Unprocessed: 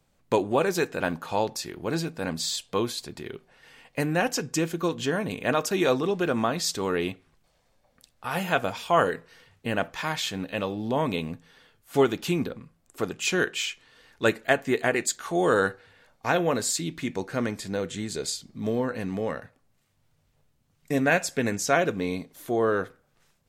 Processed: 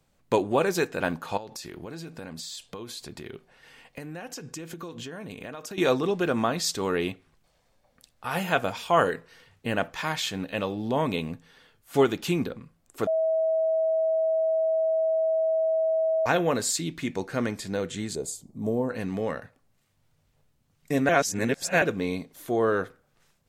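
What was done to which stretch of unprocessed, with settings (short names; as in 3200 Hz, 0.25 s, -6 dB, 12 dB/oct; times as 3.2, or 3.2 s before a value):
1.37–5.78 compressor 16:1, threshold -34 dBFS
13.07–16.26 bleep 644 Hz -21 dBFS
18.15–18.9 band shelf 2600 Hz -15.5 dB 2.4 oct
21.09–21.82 reverse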